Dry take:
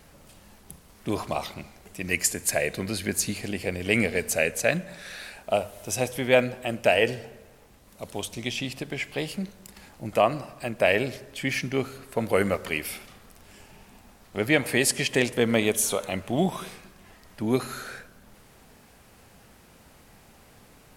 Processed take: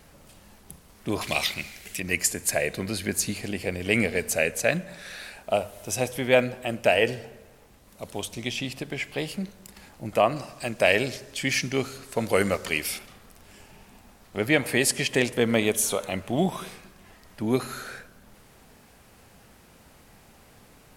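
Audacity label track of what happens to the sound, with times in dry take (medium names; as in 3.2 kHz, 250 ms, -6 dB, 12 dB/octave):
1.210000	2.000000	resonant high shelf 1.5 kHz +11 dB, Q 1.5
10.360000	12.990000	peaking EQ 6.1 kHz +8.5 dB 1.7 oct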